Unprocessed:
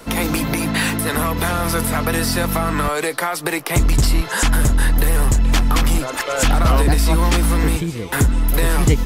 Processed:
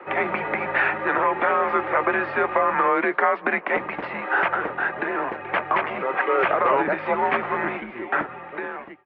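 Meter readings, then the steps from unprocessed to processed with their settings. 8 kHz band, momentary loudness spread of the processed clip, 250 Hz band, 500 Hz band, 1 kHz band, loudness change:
under -40 dB, 8 LU, -10.5 dB, 0.0 dB, +2.0 dB, -4.5 dB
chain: fade out at the end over 1.03 s; mistuned SSB -120 Hz 490–2400 Hz; trim +2.5 dB

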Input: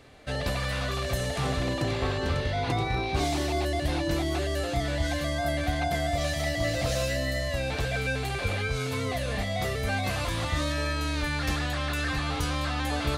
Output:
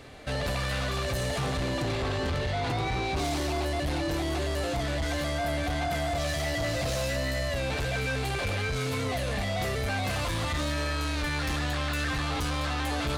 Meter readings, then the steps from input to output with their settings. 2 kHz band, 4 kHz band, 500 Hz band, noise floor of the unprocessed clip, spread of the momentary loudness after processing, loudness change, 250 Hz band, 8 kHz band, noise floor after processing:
-0.5 dB, -0.5 dB, -1.0 dB, -31 dBFS, 1 LU, -1.0 dB, -1.0 dB, 0.0 dB, -30 dBFS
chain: in parallel at -1 dB: peak limiter -26 dBFS, peak gain reduction 11.5 dB; on the sum: saturation -25.5 dBFS, distortion -11 dB

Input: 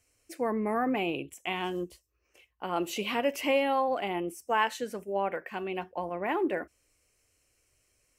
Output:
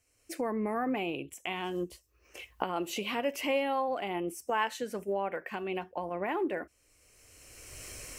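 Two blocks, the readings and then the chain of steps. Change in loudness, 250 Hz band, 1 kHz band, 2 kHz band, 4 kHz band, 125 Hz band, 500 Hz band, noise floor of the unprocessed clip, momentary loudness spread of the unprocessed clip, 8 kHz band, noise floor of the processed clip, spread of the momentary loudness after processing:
-2.5 dB, -2.5 dB, -3.0 dB, -2.5 dB, -2.0 dB, -1.5 dB, -2.5 dB, -74 dBFS, 9 LU, +1.5 dB, -70 dBFS, 15 LU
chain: recorder AGC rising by 23 dB/s; trim -3.5 dB

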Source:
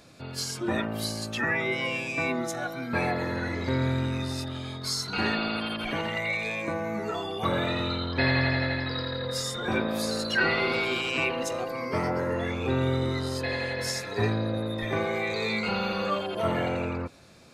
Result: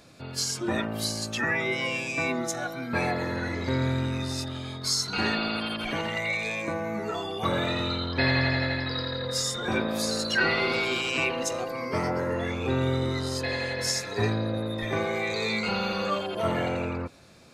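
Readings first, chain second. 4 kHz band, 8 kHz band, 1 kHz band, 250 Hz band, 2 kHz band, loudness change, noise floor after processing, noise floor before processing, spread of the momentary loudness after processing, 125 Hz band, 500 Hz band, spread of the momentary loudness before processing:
+2.0 dB, +5.0 dB, 0.0 dB, 0.0 dB, +0.5 dB, +0.5 dB, -37 dBFS, -38 dBFS, 6 LU, 0.0 dB, 0.0 dB, 6 LU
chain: dynamic bell 6.5 kHz, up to +6 dB, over -48 dBFS, Q 1.2

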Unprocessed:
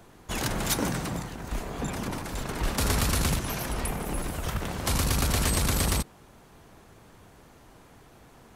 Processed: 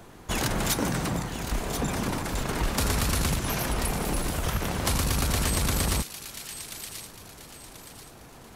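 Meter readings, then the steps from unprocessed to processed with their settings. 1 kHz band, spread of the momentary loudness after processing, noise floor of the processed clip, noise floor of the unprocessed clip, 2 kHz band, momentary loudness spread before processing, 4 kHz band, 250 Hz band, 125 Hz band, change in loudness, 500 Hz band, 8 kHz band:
+1.5 dB, 18 LU, -48 dBFS, -54 dBFS, +1.5 dB, 9 LU, +1.5 dB, +1.5 dB, +1.0 dB, +0.5 dB, +1.5 dB, +1.0 dB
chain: compression 3:1, threshold -28 dBFS, peak gain reduction 6 dB; on a send: feedback echo behind a high-pass 1035 ms, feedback 36%, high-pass 2.2 kHz, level -8 dB; on the sum: trim +4.5 dB

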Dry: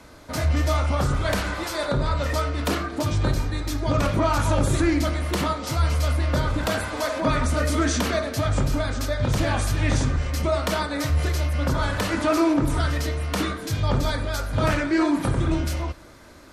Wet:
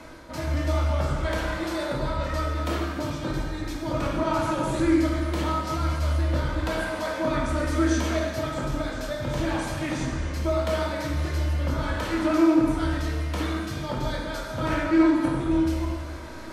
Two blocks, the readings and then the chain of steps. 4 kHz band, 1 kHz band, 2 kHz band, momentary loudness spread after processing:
-5.0 dB, -3.0 dB, -3.5 dB, 8 LU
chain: treble shelf 4.7 kHz -7 dB; hum notches 50/100 Hz; reverse; upward compressor, threshold -25 dBFS; reverse; feedback comb 320 Hz, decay 0.18 s, harmonics all, mix 60%; gated-style reverb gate 490 ms falling, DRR -1 dB

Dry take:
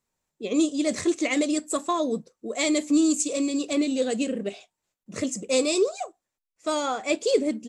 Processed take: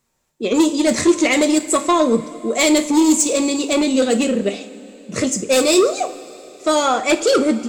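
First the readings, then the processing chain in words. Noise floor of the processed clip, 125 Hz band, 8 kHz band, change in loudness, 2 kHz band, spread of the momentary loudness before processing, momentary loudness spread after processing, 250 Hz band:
-63 dBFS, +11.0 dB, +10.0 dB, +8.5 dB, +10.0 dB, 12 LU, 11 LU, +8.0 dB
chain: sine folder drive 7 dB, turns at -10 dBFS; two-slope reverb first 0.35 s, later 3.8 s, from -18 dB, DRR 7 dB; endings held to a fixed fall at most 520 dB/s

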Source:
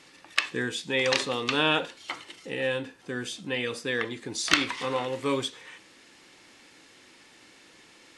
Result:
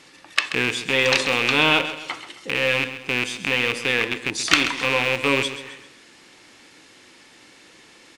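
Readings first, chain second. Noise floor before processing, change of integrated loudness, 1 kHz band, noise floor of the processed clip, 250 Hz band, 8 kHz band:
-55 dBFS, +8.0 dB, +6.0 dB, -50 dBFS, +4.5 dB, +5.5 dB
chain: rattle on loud lows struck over -40 dBFS, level -14 dBFS; on a send: feedback delay 132 ms, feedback 42%, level -12 dB; on the sum: trim +4.5 dB

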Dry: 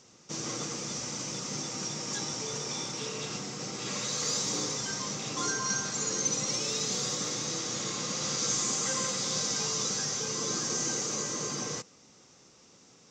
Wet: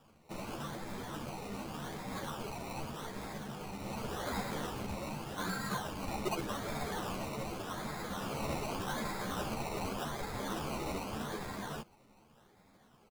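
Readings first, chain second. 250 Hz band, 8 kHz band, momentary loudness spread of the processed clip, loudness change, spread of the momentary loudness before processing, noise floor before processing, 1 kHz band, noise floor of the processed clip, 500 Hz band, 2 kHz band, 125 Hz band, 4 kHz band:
-1.5 dB, -20.5 dB, 6 LU, -9.0 dB, 7 LU, -58 dBFS, +0.5 dB, -64 dBFS, -2.5 dB, -4.0 dB, -1.5 dB, -13.5 dB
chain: Chebyshev low-pass 5.6 kHz, order 3; comb 1.2 ms, depth 54%; decimation with a swept rate 21×, swing 60% 0.85 Hz; three-phase chorus; trim -2 dB

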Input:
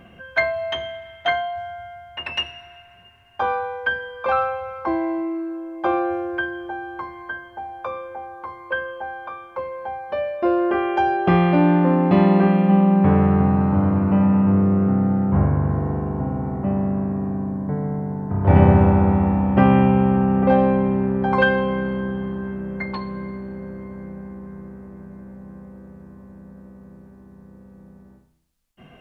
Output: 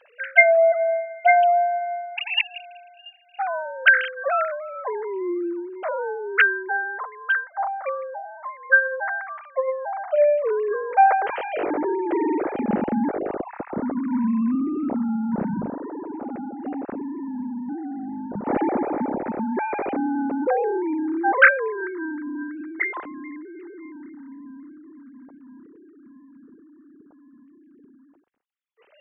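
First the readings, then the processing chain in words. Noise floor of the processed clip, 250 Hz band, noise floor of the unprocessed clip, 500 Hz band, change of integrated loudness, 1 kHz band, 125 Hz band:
-54 dBFS, -7.5 dB, -48 dBFS, 0.0 dB, -3.0 dB, 0.0 dB, -22.5 dB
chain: formants replaced by sine waves; band-stop 1.1 kHz, Q 13; trim -3.5 dB

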